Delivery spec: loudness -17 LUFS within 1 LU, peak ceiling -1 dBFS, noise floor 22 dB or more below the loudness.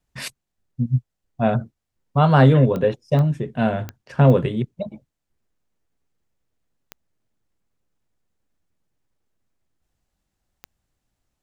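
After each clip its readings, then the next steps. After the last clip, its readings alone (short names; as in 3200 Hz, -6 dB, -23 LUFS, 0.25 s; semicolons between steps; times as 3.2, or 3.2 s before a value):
clicks 6; loudness -19.5 LUFS; peak -2.5 dBFS; loudness target -17.0 LUFS
-> de-click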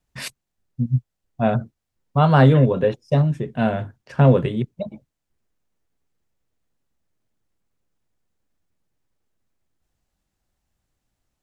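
clicks 0; loudness -19.5 LUFS; peak -2.5 dBFS; loudness target -17.0 LUFS
-> gain +2.5 dB; limiter -1 dBFS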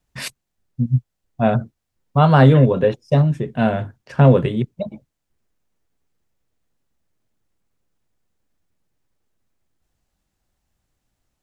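loudness -17.0 LUFS; peak -1.0 dBFS; noise floor -77 dBFS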